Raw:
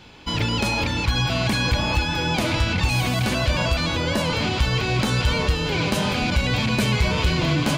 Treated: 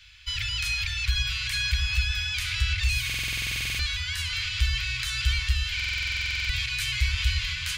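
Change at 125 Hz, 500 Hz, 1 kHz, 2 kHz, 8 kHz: -8.5 dB, under -30 dB, -20.0 dB, -2.5 dB, -2.0 dB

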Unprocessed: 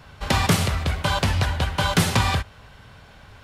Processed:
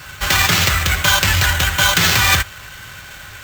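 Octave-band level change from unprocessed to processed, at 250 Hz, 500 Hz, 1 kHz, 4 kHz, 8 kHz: -1.5, +1.0, +5.0, +11.0, +12.5 dB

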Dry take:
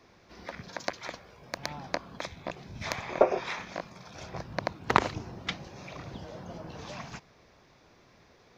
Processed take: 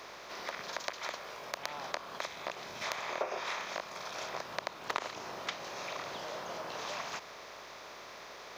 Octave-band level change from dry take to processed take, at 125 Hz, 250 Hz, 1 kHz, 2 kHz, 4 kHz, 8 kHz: -16.5, -12.0, -4.5, -2.0, +0.5, +2.0 dB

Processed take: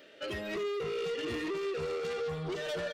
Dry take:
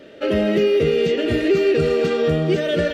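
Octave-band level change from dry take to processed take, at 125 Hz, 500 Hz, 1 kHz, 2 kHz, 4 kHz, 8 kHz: -19.0 dB, -17.0 dB, -9.5 dB, -12.5 dB, -12.5 dB, n/a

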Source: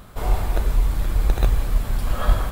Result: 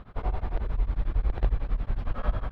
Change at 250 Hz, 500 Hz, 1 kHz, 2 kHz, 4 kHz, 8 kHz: -7.5 dB, -8.0 dB, -8.5 dB, -10.5 dB, -16.0 dB, under -30 dB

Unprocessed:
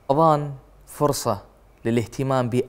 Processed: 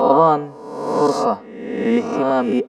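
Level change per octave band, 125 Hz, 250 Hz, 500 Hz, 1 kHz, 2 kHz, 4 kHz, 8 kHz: -7.0, +5.5, +5.5, +5.5, +5.5, +0.5, -6.0 dB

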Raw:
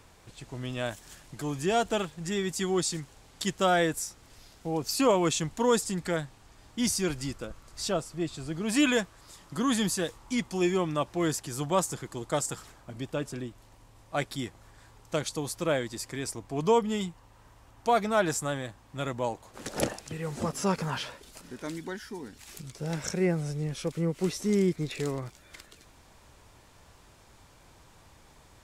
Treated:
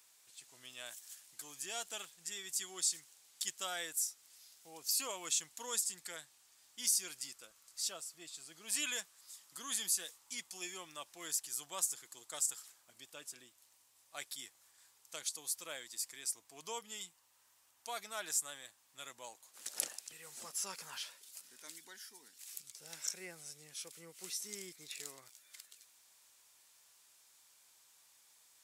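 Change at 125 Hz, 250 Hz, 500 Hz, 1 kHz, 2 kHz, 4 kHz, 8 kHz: under -30 dB, -29.5 dB, -24.0 dB, -18.5 dB, -12.5 dB, -6.0 dB, -1.0 dB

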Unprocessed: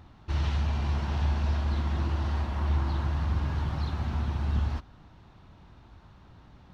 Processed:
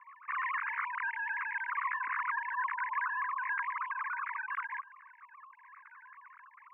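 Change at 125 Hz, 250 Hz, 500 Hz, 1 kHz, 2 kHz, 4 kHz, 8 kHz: under -40 dB, under -40 dB, under -40 dB, +5.5 dB, +11.0 dB, under -20 dB, n/a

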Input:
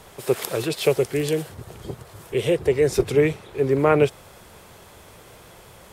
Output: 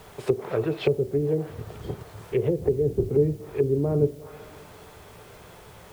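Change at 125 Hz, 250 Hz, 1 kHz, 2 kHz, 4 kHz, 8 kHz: +0.5 dB, -2.5 dB, -11.0 dB, -12.0 dB, under -10 dB, under -15 dB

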